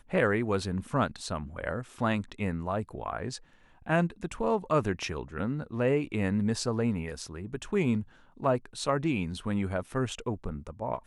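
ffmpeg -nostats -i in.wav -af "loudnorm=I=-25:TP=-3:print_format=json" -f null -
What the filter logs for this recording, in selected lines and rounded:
"input_i" : "-31.3",
"input_tp" : "-12.7",
"input_lra" : "2.4",
"input_thresh" : "-41.4",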